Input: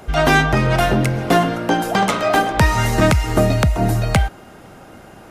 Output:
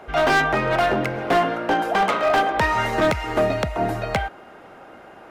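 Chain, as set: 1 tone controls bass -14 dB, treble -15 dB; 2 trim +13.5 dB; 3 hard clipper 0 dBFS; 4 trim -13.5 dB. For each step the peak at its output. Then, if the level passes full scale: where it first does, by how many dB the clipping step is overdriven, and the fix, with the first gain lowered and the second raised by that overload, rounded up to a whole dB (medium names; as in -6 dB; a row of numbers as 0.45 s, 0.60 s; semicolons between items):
-4.0 dBFS, +9.5 dBFS, 0.0 dBFS, -13.5 dBFS; step 2, 9.5 dB; step 2 +3.5 dB, step 4 -3.5 dB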